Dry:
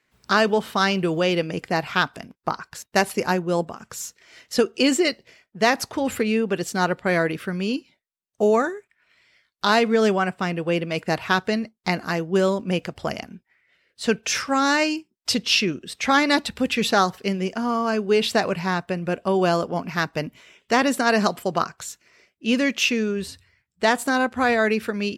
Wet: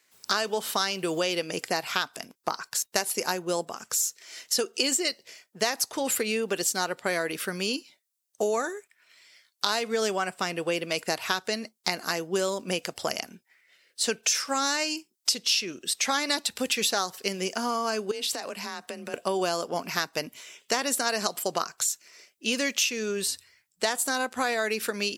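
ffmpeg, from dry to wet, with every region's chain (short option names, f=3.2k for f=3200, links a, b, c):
-filter_complex "[0:a]asettb=1/sr,asplit=3[a][b][c];[a]atrim=end=18.114[d];[b]atrim=start=18.11:end=19.14,asetpts=PTS-STARTPTS,afade=t=in:d=0.004:c=qsin,afade=t=out:st=1.026:d=0.004:c=qsin,afreqshift=30,acompressor=threshold=-30dB:ratio=10:attack=3.2:release=140:knee=1:detection=peak[e];[c]atrim=start=19.136[f];[d][e]acrossfade=d=0.004:c1=hsin:c2=qsin[g];[g][f]acrossfade=d=0.004:c1=qsin:c2=hsin,highpass=76,bass=f=250:g=-12,treble=f=4k:g=14,acompressor=threshold=-24dB:ratio=4"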